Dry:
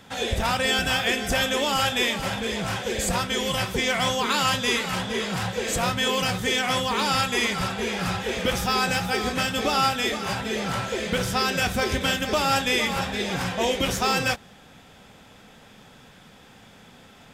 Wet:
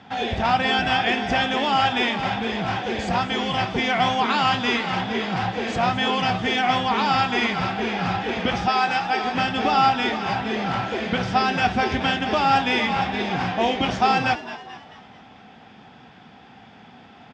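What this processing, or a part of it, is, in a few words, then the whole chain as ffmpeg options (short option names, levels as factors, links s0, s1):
frequency-shifting delay pedal into a guitar cabinet: -filter_complex "[0:a]asplit=6[s0][s1][s2][s3][s4][s5];[s1]adelay=218,afreqshift=120,volume=0.2[s6];[s2]adelay=436,afreqshift=240,volume=0.0955[s7];[s3]adelay=654,afreqshift=360,volume=0.0457[s8];[s4]adelay=872,afreqshift=480,volume=0.0221[s9];[s5]adelay=1090,afreqshift=600,volume=0.0106[s10];[s0][s6][s7][s8][s9][s10]amix=inputs=6:normalize=0,highpass=76,equalizer=f=240:t=q:w=4:g=4,equalizer=f=540:t=q:w=4:g=-6,equalizer=f=760:t=q:w=4:g=9,equalizer=f=3900:t=q:w=4:g=-5,lowpass=f=4600:w=0.5412,lowpass=f=4600:w=1.3066,asettb=1/sr,asplit=3[s11][s12][s13];[s11]atrim=end=8.684[s14];[s12]atrim=start=8.68:end=9.35,asetpts=PTS-STARTPTS,afade=t=in:d=0.004:c=qsin,afade=t=out:st=0.666:d=0.004:c=qsin,equalizer=f=80:t=o:w=2.9:g=-14.5[s15];[s13]atrim=start=9.346[s16];[s14][s15]acrossfade=d=0.004:c1=hsin:c2=qsin[s17];[s17][s16]acrossfade=d=0.004:c1=qsin:c2=hsin,volume=1.19"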